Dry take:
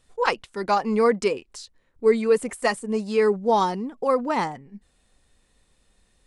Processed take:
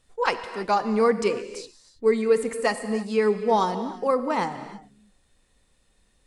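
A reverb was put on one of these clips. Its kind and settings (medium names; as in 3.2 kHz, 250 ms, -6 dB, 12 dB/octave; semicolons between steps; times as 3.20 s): gated-style reverb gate 350 ms flat, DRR 10 dB; trim -1.5 dB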